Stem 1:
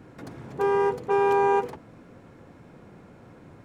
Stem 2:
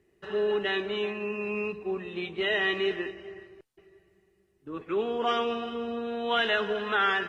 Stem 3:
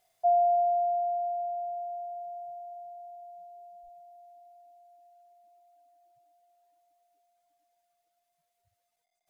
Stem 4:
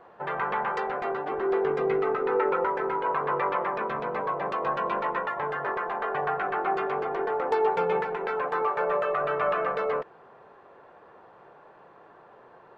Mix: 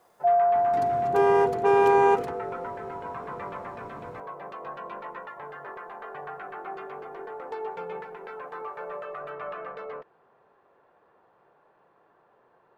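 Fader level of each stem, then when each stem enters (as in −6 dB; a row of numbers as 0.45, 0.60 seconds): +2.0 dB, muted, +2.5 dB, −10.5 dB; 0.55 s, muted, 0.00 s, 0.00 s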